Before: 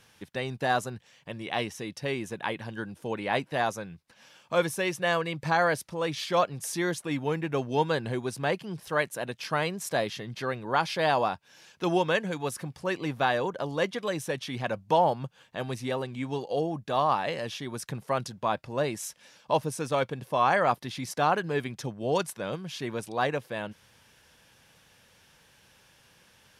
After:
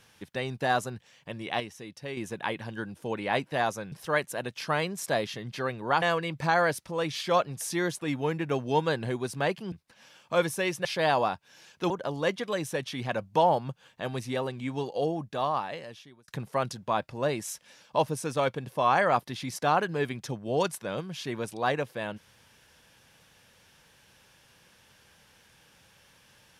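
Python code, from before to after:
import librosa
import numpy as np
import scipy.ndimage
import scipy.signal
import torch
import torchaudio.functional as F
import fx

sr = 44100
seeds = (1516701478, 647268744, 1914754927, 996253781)

y = fx.edit(x, sr, fx.clip_gain(start_s=1.6, length_s=0.57, db=-6.5),
    fx.swap(start_s=3.92, length_s=1.13, other_s=8.75, other_length_s=2.1),
    fx.cut(start_s=11.9, length_s=1.55),
    fx.fade_out_span(start_s=16.64, length_s=1.19), tone=tone)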